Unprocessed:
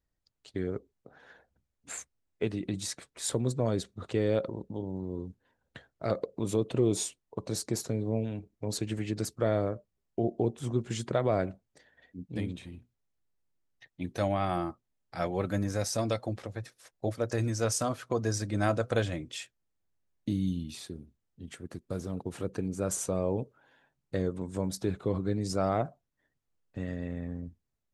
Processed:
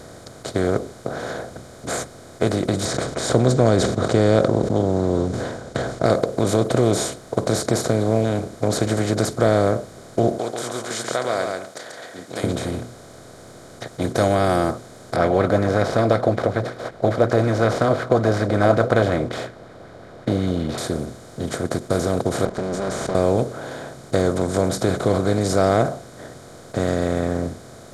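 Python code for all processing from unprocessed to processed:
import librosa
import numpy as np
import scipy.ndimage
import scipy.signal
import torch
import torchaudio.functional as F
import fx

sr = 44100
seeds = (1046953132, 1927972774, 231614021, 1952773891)

y = fx.chain(x, sr, fx.lowpass(hz=7500.0, slope=24),
    fx.low_shelf(hz=430.0, db=7.0),
    fx.sustainer(db_per_s=110.0), at=(2.85, 6.06))
y = fx.chain(y, sr, fx.highpass(hz=1400.0, slope=12),
    fx.echo_single(ms=137, db=-9.5), at=(10.38, 12.44))
y = fx.chain(y, sr, fx.median_filter(points=5),
    fx.air_absorb(metres=390.0),
    fx.bell_lfo(hz=5.4, low_hz=480.0, high_hz=2100.0, db=12), at=(15.16, 20.78))
y = fx.chain(y, sr, fx.lower_of_two(delay_ms=5.0),
    fx.level_steps(step_db=22),
    fx.air_absorb(metres=100.0), at=(22.45, 23.15))
y = fx.bin_compress(y, sr, power=0.4)
y = fx.notch(y, sr, hz=2700.0, q=6.8)
y = y * librosa.db_to_amplitude(3.5)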